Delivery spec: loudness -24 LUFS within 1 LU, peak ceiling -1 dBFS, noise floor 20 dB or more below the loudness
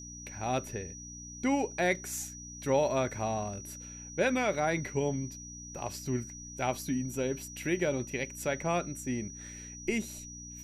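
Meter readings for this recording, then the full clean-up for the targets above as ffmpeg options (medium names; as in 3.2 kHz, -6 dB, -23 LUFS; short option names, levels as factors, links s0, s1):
hum 60 Hz; highest harmonic 300 Hz; hum level -46 dBFS; steady tone 5.8 kHz; tone level -45 dBFS; loudness -33.5 LUFS; peak level -15.5 dBFS; loudness target -24.0 LUFS
-> -af "bandreject=f=60:t=h:w=4,bandreject=f=120:t=h:w=4,bandreject=f=180:t=h:w=4,bandreject=f=240:t=h:w=4,bandreject=f=300:t=h:w=4"
-af "bandreject=f=5800:w=30"
-af "volume=2.99"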